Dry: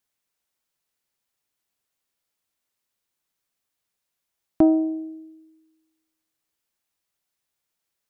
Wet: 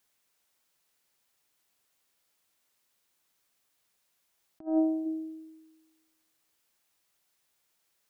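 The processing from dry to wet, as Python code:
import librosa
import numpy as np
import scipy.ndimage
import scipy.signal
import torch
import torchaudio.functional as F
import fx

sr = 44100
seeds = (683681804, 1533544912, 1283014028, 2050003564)

y = fx.peak_eq(x, sr, hz=380.0, db=-8.0, octaves=1.0, at=(4.65, 5.05), fade=0.02)
y = fx.over_compress(y, sr, threshold_db=-27.0, ratio=-0.5)
y = fx.low_shelf(y, sr, hz=220.0, db=-5.0)
y = F.gain(torch.from_numpy(y), 1.0).numpy()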